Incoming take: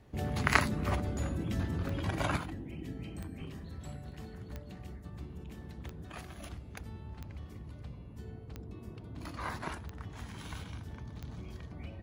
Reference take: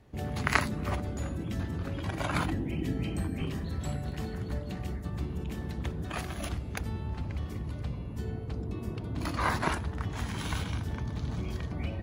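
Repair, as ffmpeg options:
ffmpeg -i in.wav -af "adeclick=threshold=4,asetnsamples=nb_out_samples=441:pad=0,asendcmd='2.36 volume volume 10dB',volume=0dB" out.wav

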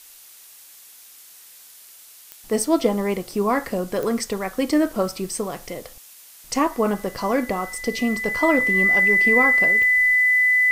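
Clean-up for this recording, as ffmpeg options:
ffmpeg -i in.wav -af "adeclick=threshold=4,bandreject=frequency=2000:width=30,afftdn=noise_reduction=20:noise_floor=-46" out.wav

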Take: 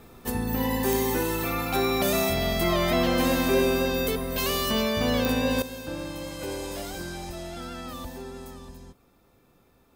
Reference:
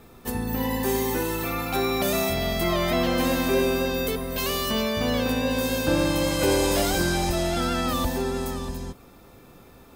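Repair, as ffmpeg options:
ffmpeg -i in.wav -af "adeclick=threshold=4,asetnsamples=nb_out_samples=441:pad=0,asendcmd='5.62 volume volume 12dB',volume=0dB" out.wav

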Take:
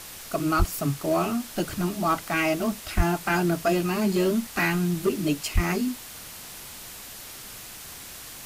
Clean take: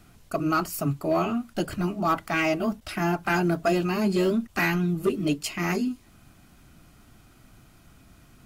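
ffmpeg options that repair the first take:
ffmpeg -i in.wav -filter_complex "[0:a]asplit=3[link_01][link_02][link_03];[link_01]afade=type=out:start_time=0.58:duration=0.02[link_04];[link_02]highpass=frequency=140:width=0.5412,highpass=frequency=140:width=1.3066,afade=type=in:start_time=0.58:duration=0.02,afade=type=out:start_time=0.7:duration=0.02[link_05];[link_03]afade=type=in:start_time=0.7:duration=0.02[link_06];[link_04][link_05][link_06]amix=inputs=3:normalize=0,asplit=3[link_07][link_08][link_09];[link_07]afade=type=out:start_time=2.96:duration=0.02[link_10];[link_08]highpass=frequency=140:width=0.5412,highpass=frequency=140:width=1.3066,afade=type=in:start_time=2.96:duration=0.02,afade=type=out:start_time=3.08:duration=0.02[link_11];[link_09]afade=type=in:start_time=3.08:duration=0.02[link_12];[link_10][link_11][link_12]amix=inputs=3:normalize=0,asplit=3[link_13][link_14][link_15];[link_13]afade=type=out:start_time=5.54:duration=0.02[link_16];[link_14]highpass=frequency=140:width=0.5412,highpass=frequency=140:width=1.3066,afade=type=in:start_time=5.54:duration=0.02,afade=type=out:start_time=5.66:duration=0.02[link_17];[link_15]afade=type=in:start_time=5.66:duration=0.02[link_18];[link_16][link_17][link_18]amix=inputs=3:normalize=0,afwtdn=0.01" out.wav

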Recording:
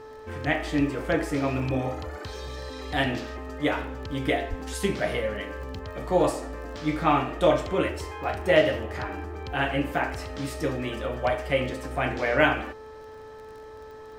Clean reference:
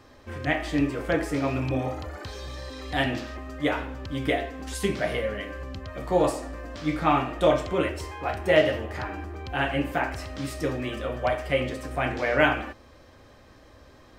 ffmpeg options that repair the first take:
ffmpeg -i in.wav -filter_complex "[0:a]adeclick=threshold=4,bandreject=frequency=435.8:width_type=h:width=4,bandreject=frequency=871.6:width_type=h:width=4,bandreject=frequency=1307.4:width_type=h:width=4,bandreject=frequency=1743.2:width_type=h:width=4,asplit=3[link_01][link_02][link_03];[link_01]afade=type=out:start_time=4.49:duration=0.02[link_04];[link_02]highpass=frequency=140:width=0.5412,highpass=frequency=140:width=1.3066,afade=type=in:start_time=4.49:duration=0.02,afade=type=out:start_time=4.61:duration=0.02[link_05];[link_03]afade=type=in:start_time=4.61:duration=0.02[link_06];[link_04][link_05][link_06]amix=inputs=3:normalize=0" out.wav

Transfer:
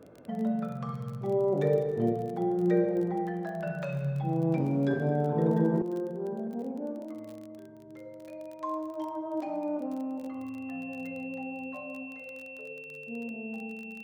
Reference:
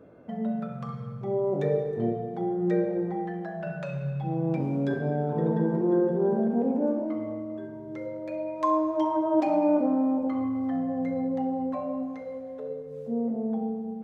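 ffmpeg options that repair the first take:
ffmpeg -i in.wav -af "adeclick=threshold=4,bandreject=frequency=2700:width=30,asetnsamples=nb_out_samples=441:pad=0,asendcmd='5.82 volume volume 10dB',volume=0dB" out.wav

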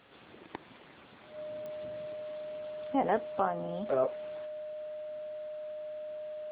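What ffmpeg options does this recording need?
ffmpeg -i in.wav -af "adeclick=threshold=4,bandreject=frequency=610:width=30" out.wav

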